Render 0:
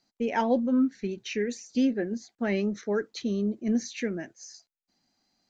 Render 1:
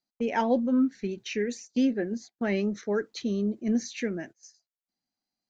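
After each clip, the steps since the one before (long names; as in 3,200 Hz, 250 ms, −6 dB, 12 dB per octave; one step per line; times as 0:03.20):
noise gate −44 dBFS, range −16 dB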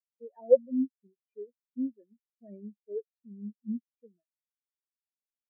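comb filter 1.7 ms, depth 46%
every bin expanded away from the loudest bin 4 to 1
level +5 dB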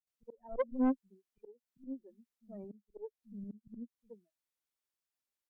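volume swells 278 ms
tube saturation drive 31 dB, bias 0.7
multiband delay without the direct sound lows, highs 70 ms, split 160 Hz
level +7 dB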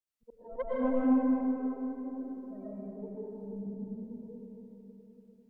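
convolution reverb RT60 3.8 s, pre-delay 75 ms, DRR −8.5 dB
level −3 dB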